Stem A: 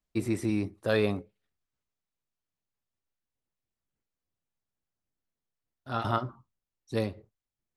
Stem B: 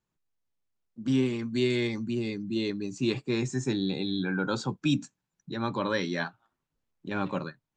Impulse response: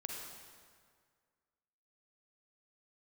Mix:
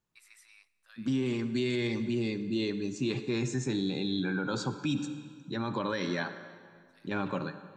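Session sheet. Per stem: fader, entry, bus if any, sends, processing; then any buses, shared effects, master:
−14.0 dB, 0.00 s, send −15.5 dB, high-pass filter 1,300 Hz 24 dB per octave; automatic ducking −13 dB, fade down 0.25 s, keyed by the second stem
−2.5 dB, 0.00 s, send −6 dB, no processing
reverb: on, RT60 1.9 s, pre-delay 38 ms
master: brickwall limiter −22 dBFS, peak gain reduction 7 dB

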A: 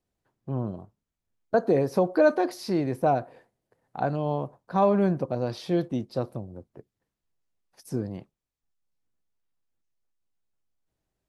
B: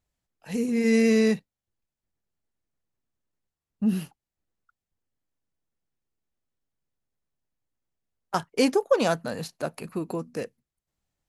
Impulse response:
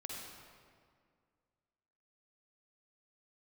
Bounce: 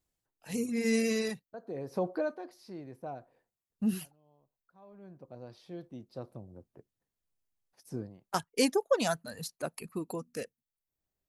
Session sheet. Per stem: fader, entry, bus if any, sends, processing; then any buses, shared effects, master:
0:02.10 −7.5 dB → 0:02.37 −18.5 dB → 0:05.81 −18.5 dB → 0:06.55 −8.5 dB, 0.00 s, no send, automatic ducking −21 dB, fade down 0.30 s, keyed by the second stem
−5.5 dB, 0.00 s, no send, reverb reduction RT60 1.6 s; high-shelf EQ 5,400 Hz +10 dB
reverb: not used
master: no processing

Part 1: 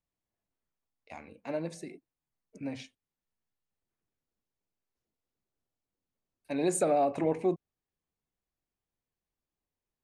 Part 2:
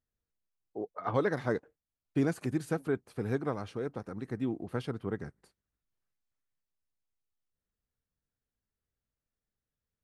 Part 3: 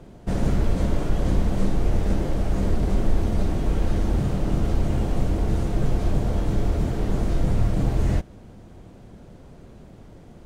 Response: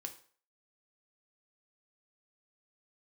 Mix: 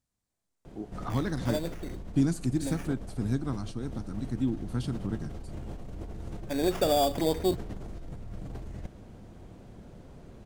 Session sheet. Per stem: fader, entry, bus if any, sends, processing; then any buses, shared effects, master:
+1.5 dB, 0.00 s, no send, low-pass filter 6,100 Hz 12 dB per octave; sample-rate reduction 4,100 Hz, jitter 0%
−3.5 dB, 0.00 s, send −4.5 dB, octave-band graphic EQ 125/250/500/2,000/4,000/8,000 Hz +6/+8/−12/−7/+6/+11 dB; de-essing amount 75%
−9.5 dB, 0.65 s, no send, brickwall limiter −16 dBFS, peak gain reduction 7 dB; compressor whose output falls as the input rises −29 dBFS, ratio −1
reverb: on, RT60 0.45 s, pre-delay 3 ms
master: no processing

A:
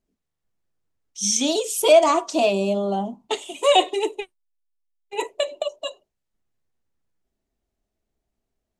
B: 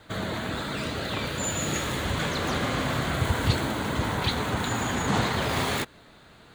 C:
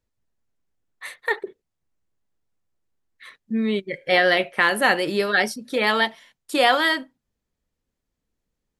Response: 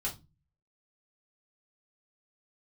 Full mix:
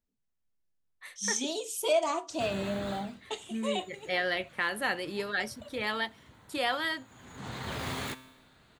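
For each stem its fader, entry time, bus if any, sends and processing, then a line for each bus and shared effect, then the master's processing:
0:03.49 −11.5 dB → 0:03.98 −23 dB, 0.00 s, send −12.5 dB, no processing
−1.0 dB, 2.30 s, no send, tuned comb filter 130 Hz, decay 1 s, harmonics all, mix 60%; automatic ducking −21 dB, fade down 0.25 s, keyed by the third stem
−11.0 dB, 0.00 s, no send, no processing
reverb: on, RT60 0.25 s, pre-delay 3 ms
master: parametric band 580 Hz −2.5 dB 2 octaves

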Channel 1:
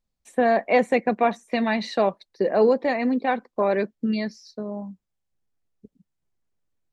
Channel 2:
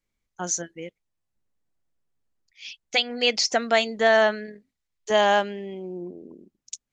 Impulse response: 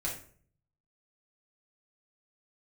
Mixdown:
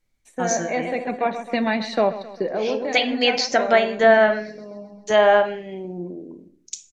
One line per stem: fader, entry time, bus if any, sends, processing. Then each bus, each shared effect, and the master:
+1.0 dB, 0.00 s, send −17 dB, echo send −14 dB, automatic ducking −9 dB, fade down 0.25 s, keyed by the second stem
+1.5 dB, 0.00 s, send −6.5 dB, no echo send, no processing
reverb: on, RT60 0.50 s, pre-delay 3 ms
echo: repeating echo 132 ms, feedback 51%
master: treble cut that deepens with the level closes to 2,200 Hz, closed at −11.5 dBFS

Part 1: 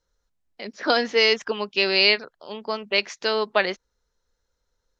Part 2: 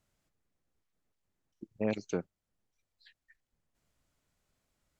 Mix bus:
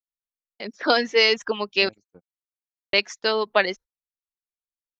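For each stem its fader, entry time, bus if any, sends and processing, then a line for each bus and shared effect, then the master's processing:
+1.5 dB, 0.00 s, muted 0:01.89–0:02.93, no send, no processing
−10.5 dB, 0.00 s, no send, no processing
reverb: not used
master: reverb reduction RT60 0.63 s; noise gate −40 dBFS, range −38 dB

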